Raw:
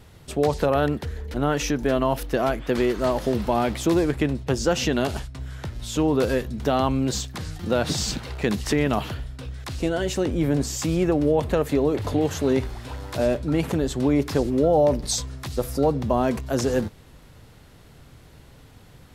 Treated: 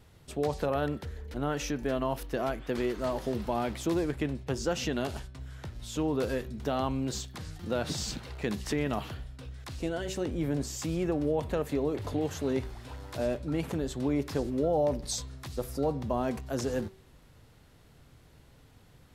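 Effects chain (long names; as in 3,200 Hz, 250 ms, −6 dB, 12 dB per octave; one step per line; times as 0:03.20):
hum removal 190.8 Hz, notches 23
level −8.5 dB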